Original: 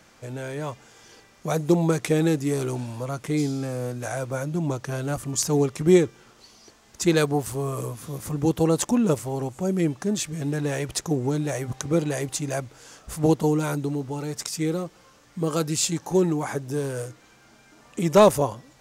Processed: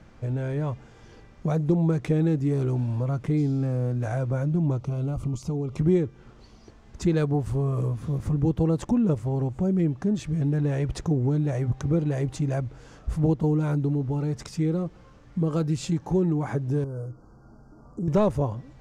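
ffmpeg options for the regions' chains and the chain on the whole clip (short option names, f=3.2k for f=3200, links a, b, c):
-filter_complex "[0:a]asettb=1/sr,asplit=3[a][b][c];[a]atrim=end=4.804[d];[b]atrim=start=4.8:end=5.77,asetpts=PTS-STARTPTS,afade=t=in:d=0.004:c=qsin,afade=t=out:st=0.966:d=0.004:c=qsin,acompressor=threshold=-30dB:ratio=5:attack=3.2:release=140:knee=1:detection=peak,asuperstop=centerf=1700:order=4:qfactor=2.5[e];[c]atrim=start=5.766[f];[d][e]acrossfade=d=0.004:c1=hsin:c2=qsin[g];[g][f]acrossfade=d=0.004:c1=qsin:c2=hsin,asettb=1/sr,asplit=3[h][i][j];[h]atrim=end=16.844[k];[i]atrim=start=16.84:end=18.08,asetpts=PTS-STARTPTS,afade=t=in:d=0.004:c=qsin,afade=t=out:st=1.236:d=0.004:c=qsin,equalizer=f=6k:w=0.72:g=-6.5,acompressor=threshold=-50dB:ratio=1.5:attack=3.2:release=140:knee=1:detection=peak,asuperstop=centerf=2600:order=20:qfactor=0.87[l];[j]atrim=start=18.076[m];[k][l]acrossfade=d=0.004:c1=hsin:c2=qsin[n];[n][m]acrossfade=d=0.004:c1=qsin:c2=hsin,aemphasis=mode=reproduction:type=riaa,acompressor=threshold=-23dB:ratio=2,volume=-1.5dB"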